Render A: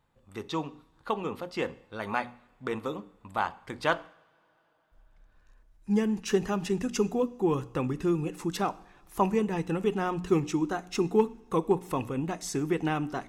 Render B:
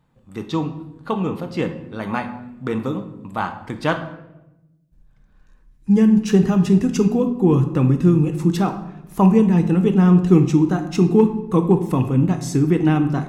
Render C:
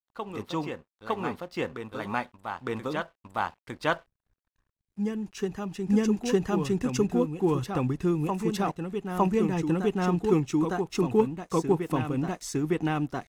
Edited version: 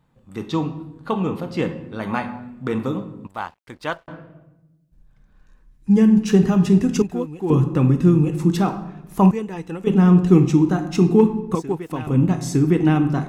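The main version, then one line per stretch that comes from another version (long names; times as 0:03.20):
B
0:03.27–0:04.08: punch in from C
0:07.02–0:07.50: punch in from C
0:09.31–0:09.87: punch in from A
0:11.55–0:12.07: punch in from C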